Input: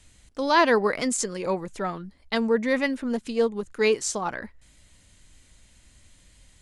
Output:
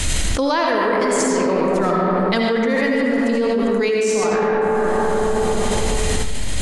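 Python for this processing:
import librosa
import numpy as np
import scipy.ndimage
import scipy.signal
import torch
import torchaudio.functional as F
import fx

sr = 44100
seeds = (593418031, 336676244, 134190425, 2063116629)

y = fx.rev_freeverb(x, sr, rt60_s=2.9, hf_ratio=0.4, predelay_ms=40, drr_db=-3.0)
y = fx.env_flatten(y, sr, amount_pct=100)
y = F.gain(torch.from_numpy(y), -4.5).numpy()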